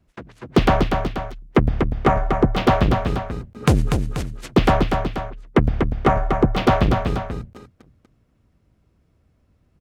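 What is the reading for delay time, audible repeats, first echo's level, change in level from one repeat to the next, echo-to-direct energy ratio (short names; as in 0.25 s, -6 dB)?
0.242 s, 2, -5.5 dB, -6.0 dB, -4.5 dB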